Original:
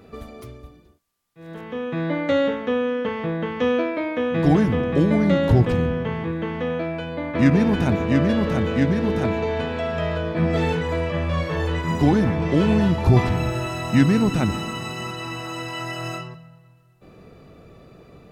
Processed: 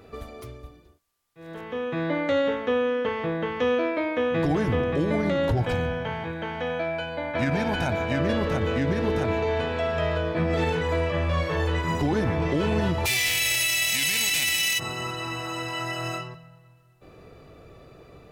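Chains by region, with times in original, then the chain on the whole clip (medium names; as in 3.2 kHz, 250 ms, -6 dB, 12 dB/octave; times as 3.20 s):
5.57–8.20 s: bass shelf 190 Hz -8.5 dB + comb 1.3 ms, depth 52%
13.05–14.78 s: formants flattened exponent 0.3 + resonant high shelf 1.7 kHz +8.5 dB, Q 3
whole clip: peaking EQ 200 Hz -8 dB 0.77 oct; peak limiter -15 dBFS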